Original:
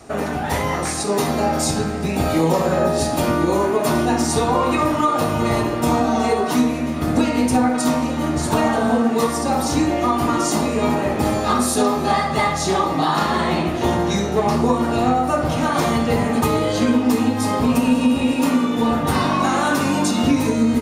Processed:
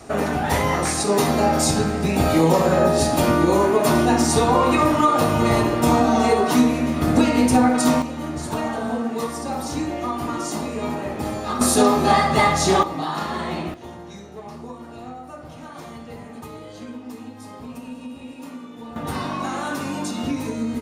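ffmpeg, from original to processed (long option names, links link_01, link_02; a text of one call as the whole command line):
ffmpeg -i in.wav -af "asetnsamples=nb_out_samples=441:pad=0,asendcmd='8.02 volume volume -7.5dB;11.61 volume volume 2dB;12.83 volume volume -7.5dB;13.74 volume volume -19dB;18.96 volume volume -8.5dB',volume=1dB" out.wav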